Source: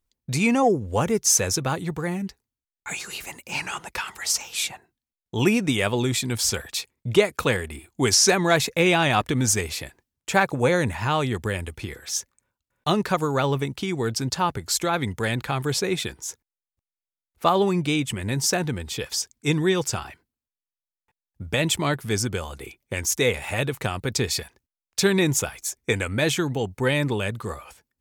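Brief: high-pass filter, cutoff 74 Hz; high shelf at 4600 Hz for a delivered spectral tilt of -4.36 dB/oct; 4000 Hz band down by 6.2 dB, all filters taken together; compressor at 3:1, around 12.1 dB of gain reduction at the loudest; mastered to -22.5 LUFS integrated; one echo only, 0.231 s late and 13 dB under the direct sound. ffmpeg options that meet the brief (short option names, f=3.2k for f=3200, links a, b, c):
-af "highpass=74,equalizer=f=4k:t=o:g=-4.5,highshelf=f=4.6k:g=-6.5,acompressor=threshold=-30dB:ratio=3,aecho=1:1:231:0.224,volume=10.5dB"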